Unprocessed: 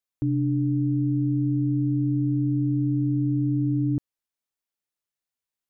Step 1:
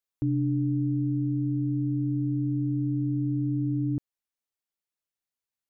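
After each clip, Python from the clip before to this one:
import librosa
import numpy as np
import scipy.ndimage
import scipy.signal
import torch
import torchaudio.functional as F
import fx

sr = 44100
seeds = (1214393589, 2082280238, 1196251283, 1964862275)

y = fx.rider(x, sr, range_db=10, speed_s=2.0)
y = y * librosa.db_to_amplitude(-3.5)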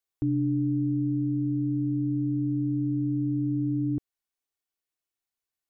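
y = x + 0.41 * np.pad(x, (int(2.7 * sr / 1000.0), 0))[:len(x)]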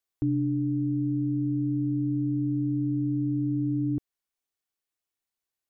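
y = fx.rider(x, sr, range_db=10, speed_s=0.5)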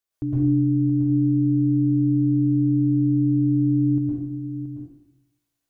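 y = fx.comb_fb(x, sr, f0_hz=57.0, decay_s=1.4, harmonics='all', damping=0.0, mix_pct=40)
y = y + 10.0 ** (-10.0 / 20.0) * np.pad(y, (int(675 * sr / 1000.0), 0))[:len(y)]
y = fx.rev_plate(y, sr, seeds[0], rt60_s=0.8, hf_ratio=1.0, predelay_ms=100, drr_db=-7.0)
y = y * librosa.db_to_amplitude(3.5)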